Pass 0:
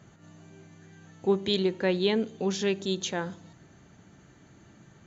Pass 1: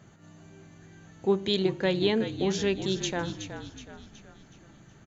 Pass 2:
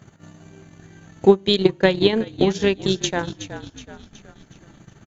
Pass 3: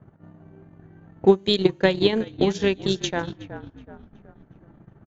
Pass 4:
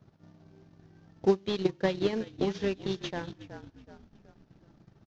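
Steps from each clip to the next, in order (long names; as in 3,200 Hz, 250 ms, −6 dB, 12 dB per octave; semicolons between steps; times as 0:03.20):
echo with shifted repeats 371 ms, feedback 47%, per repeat −46 Hz, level −9.5 dB
transient designer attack +9 dB, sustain −11 dB; level +5 dB
tape wow and flutter 24 cents; low-pass that shuts in the quiet parts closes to 1,000 Hz, open at −14.5 dBFS; level −2.5 dB
variable-slope delta modulation 32 kbit/s; level −8 dB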